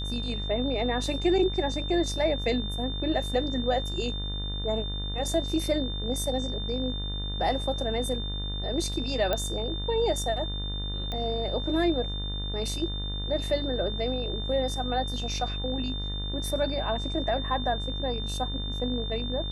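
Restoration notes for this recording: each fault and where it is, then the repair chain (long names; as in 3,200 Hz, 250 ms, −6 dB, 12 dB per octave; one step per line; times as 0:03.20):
mains buzz 50 Hz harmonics 39 −33 dBFS
whistle 3,600 Hz −35 dBFS
0:09.33: click −13 dBFS
0:11.12: click −20 dBFS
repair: click removal
notch filter 3,600 Hz, Q 30
hum removal 50 Hz, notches 39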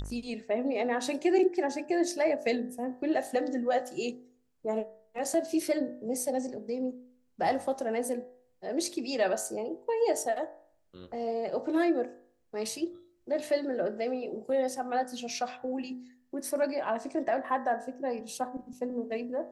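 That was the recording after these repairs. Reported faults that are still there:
none of them is left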